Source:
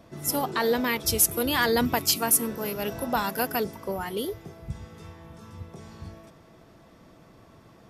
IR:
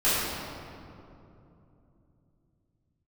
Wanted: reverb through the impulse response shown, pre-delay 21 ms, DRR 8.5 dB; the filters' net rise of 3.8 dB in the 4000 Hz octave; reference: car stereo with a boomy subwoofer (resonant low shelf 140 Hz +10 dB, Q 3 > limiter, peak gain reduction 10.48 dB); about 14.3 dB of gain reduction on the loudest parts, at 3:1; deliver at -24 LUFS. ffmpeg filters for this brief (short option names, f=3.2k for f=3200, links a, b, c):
-filter_complex "[0:a]equalizer=f=4k:t=o:g=5,acompressor=threshold=-36dB:ratio=3,asplit=2[a][b];[1:a]atrim=start_sample=2205,adelay=21[c];[b][c]afir=irnorm=-1:irlink=0,volume=-24.5dB[d];[a][d]amix=inputs=2:normalize=0,lowshelf=f=140:t=q:w=3:g=10,volume=13dB,alimiter=limit=-14dB:level=0:latency=1"